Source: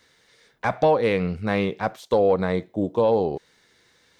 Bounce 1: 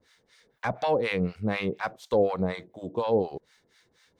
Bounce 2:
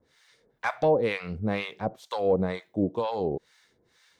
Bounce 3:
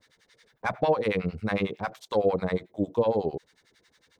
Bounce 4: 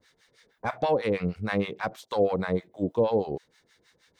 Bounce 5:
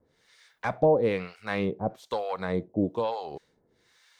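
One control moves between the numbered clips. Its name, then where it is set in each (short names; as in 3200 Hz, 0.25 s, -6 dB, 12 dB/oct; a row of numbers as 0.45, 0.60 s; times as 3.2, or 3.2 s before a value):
harmonic tremolo, rate: 4.1, 2.1, 11, 6.3, 1.1 Hz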